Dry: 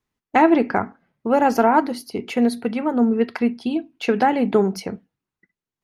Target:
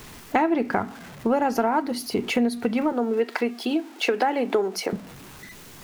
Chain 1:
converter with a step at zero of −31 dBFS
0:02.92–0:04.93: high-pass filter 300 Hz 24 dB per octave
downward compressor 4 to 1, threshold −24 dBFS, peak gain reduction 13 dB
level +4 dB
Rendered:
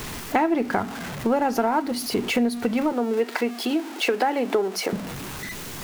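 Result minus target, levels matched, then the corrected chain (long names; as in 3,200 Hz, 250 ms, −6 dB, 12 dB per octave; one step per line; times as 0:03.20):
converter with a step at zero: distortion +9 dB
converter with a step at zero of −40.5 dBFS
0:02.92–0:04.93: high-pass filter 300 Hz 24 dB per octave
downward compressor 4 to 1, threshold −24 dBFS, peak gain reduction 13 dB
level +4 dB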